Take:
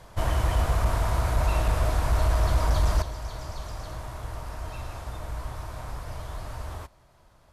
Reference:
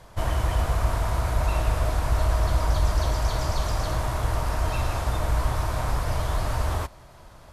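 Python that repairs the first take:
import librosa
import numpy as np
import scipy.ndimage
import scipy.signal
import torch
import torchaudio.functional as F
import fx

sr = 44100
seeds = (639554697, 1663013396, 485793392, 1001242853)

y = fx.fix_declip(x, sr, threshold_db=-15.5)
y = fx.fix_level(y, sr, at_s=3.02, step_db=10.5)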